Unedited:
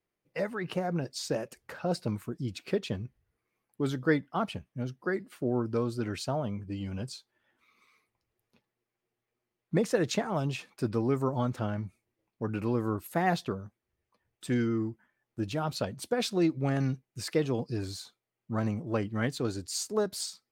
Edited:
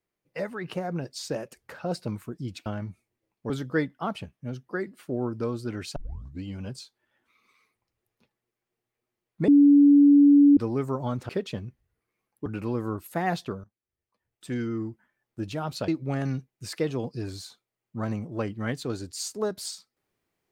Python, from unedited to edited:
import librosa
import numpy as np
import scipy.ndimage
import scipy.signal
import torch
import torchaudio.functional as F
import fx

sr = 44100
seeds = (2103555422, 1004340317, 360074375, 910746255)

y = fx.edit(x, sr, fx.swap(start_s=2.66, length_s=1.17, other_s=11.62, other_length_s=0.84),
    fx.tape_start(start_s=6.29, length_s=0.47),
    fx.bleep(start_s=9.81, length_s=1.09, hz=286.0, db=-12.0),
    fx.fade_in_from(start_s=13.64, length_s=1.27, floor_db=-16.5),
    fx.cut(start_s=15.88, length_s=0.55), tone=tone)